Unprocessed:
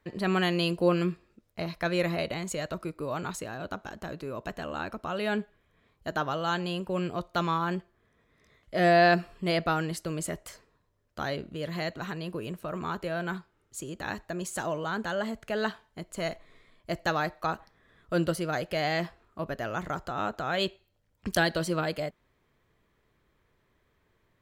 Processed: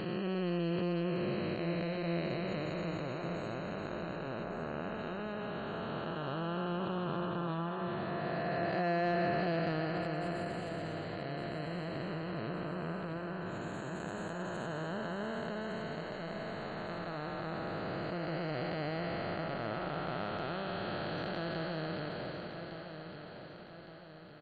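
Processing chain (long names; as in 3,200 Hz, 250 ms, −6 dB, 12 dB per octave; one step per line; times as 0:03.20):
spectrum smeared in time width 1,360 ms
0:04.43–0:04.97: low-pass filter 1,800 Hz → 4,100 Hz
gate on every frequency bin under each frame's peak −30 dB strong
soft clipping −22 dBFS, distortion −27 dB
repeating echo 1,161 ms, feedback 49%, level −9 dB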